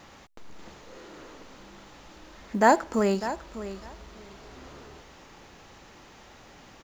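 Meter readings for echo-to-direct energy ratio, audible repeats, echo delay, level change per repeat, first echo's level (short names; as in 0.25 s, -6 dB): -13.0 dB, 2, 0.6 s, -16.0 dB, -13.0 dB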